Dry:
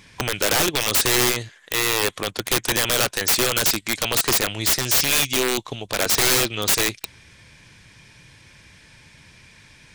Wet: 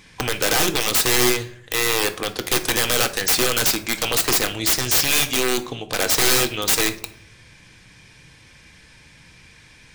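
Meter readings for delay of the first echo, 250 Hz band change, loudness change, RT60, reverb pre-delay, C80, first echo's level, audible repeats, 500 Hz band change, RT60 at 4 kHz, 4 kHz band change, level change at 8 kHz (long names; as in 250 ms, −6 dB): no echo audible, +1.5 dB, +0.5 dB, 0.60 s, 3 ms, 19.5 dB, no echo audible, no echo audible, +1.0 dB, 0.35 s, +0.5 dB, +0.5 dB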